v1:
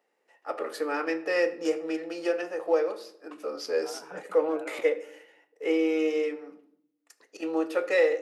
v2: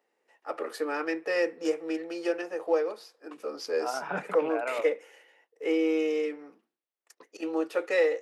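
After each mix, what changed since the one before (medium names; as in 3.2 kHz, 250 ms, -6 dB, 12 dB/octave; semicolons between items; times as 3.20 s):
second voice +11.5 dB; reverb: off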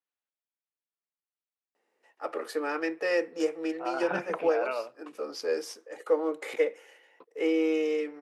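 first voice: entry +1.75 s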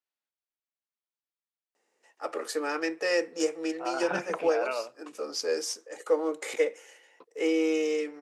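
master: add peaking EQ 7 kHz +11.5 dB 1.2 oct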